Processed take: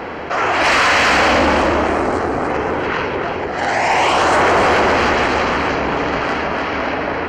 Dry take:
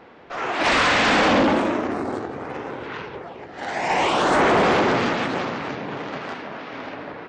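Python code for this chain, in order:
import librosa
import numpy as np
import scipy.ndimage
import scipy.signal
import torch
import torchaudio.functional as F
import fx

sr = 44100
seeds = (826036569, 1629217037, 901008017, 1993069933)

p1 = fx.octave_divider(x, sr, octaves=2, level_db=-2.0)
p2 = fx.low_shelf(p1, sr, hz=130.0, db=-10.0)
p3 = fx.notch(p2, sr, hz=3600.0, q=5.4)
p4 = fx.dynamic_eq(p3, sr, hz=200.0, q=0.7, threshold_db=-33.0, ratio=4.0, max_db=-5)
p5 = p4 + fx.echo_single(p4, sr, ms=294, db=-8.0, dry=0)
p6 = fx.quant_float(p5, sr, bits=8)
p7 = np.clip(10.0 ** (23.0 / 20.0) * p6, -1.0, 1.0) / 10.0 ** (23.0 / 20.0)
p8 = p6 + (p7 * 10.0 ** (-9.0 / 20.0))
p9 = fx.env_flatten(p8, sr, amount_pct=50)
y = p9 * 10.0 ** (3.5 / 20.0)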